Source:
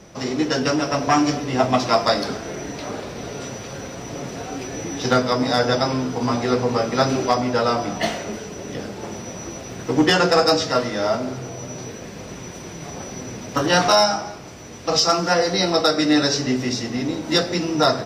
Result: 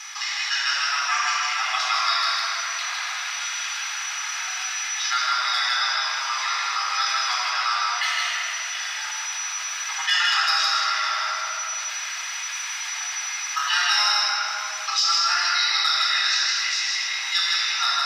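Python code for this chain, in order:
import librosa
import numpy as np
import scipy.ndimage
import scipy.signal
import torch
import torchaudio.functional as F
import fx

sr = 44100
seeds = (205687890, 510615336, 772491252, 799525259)

p1 = scipy.signal.sosfilt(scipy.signal.bessel(8, 1900.0, 'highpass', norm='mag', fs=sr, output='sos'), x)
p2 = fx.high_shelf(p1, sr, hz=5800.0, db=-9.5)
p3 = p2 + fx.echo_single(p2, sr, ms=158, db=-3.5, dry=0)
p4 = fx.room_shoebox(p3, sr, seeds[0], volume_m3=3600.0, walls='mixed', distance_m=4.0)
p5 = fx.env_flatten(p4, sr, amount_pct=50)
y = p5 * 10.0 ** (-2.0 / 20.0)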